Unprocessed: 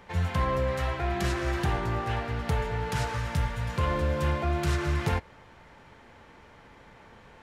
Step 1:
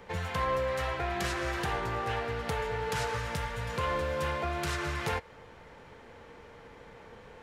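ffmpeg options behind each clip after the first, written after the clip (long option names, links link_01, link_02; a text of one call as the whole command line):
ffmpeg -i in.wav -filter_complex "[0:a]equalizer=frequency=470:width_type=o:width=0.29:gain=9.5,acrossover=split=650|2300[link_01][link_02][link_03];[link_01]acompressor=threshold=-34dB:ratio=6[link_04];[link_04][link_02][link_03]amix=inputs=3:normalize=0" out.wav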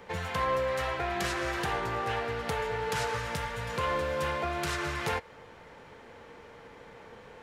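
ffmpeg -i in.wav -af "lowshelf=frequency=94:gain=-7.5,volume=1.5dB" out.wav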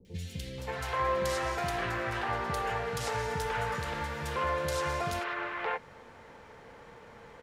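ffmpeg -i in.wav -filter_complex "[0:a]acrossover=split=340|3000[link_01][link_02][link_03];[link_03]adelay=50[link_04];[link_02]adelay=580[link_05];[link_01][link_05][link_04]amix=inputs=3:normalize=0" out.wav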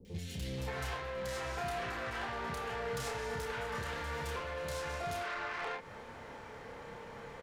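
ffmpeg -i in.wav -filter_complex "[0:a]acompressor=threshold=-35dB:ratio=6,asoftclip=type=tanh:threshold=-37dB,asplit=2[link_01][link_02];[link_02]adelay=30,volume=-4dB[link_03];[link_01][link_03]amix=inputs=2:normalize=0,volume=2dB" out.wav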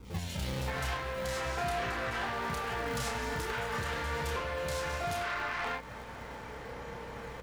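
ffmpeg -i in.wav -filter_complex "[0:a]aeval=exprs='val(0)+0.00178*(sin(2*PI*60*n/s)+sin(2*PI*2*60*n/s)/2+sin(2*PI*3*60*n/s)/3+sin(2*PI*4*60*n/s)/4+sin(2*PI*5*60*n/s)/5)':channel_layout=same,acrossover=split=400|1600|4100[link_01][link_02][link_03][link_04];[link_01]acrusher=samples=36:mix=1:aa=0.000001:lfo=1:lforange=57.6:lforate=0.4[link_05];[link_05][link_02][link_03][link_04]amix=inputs=4:normalize=0,volume=4.5dB" out.wav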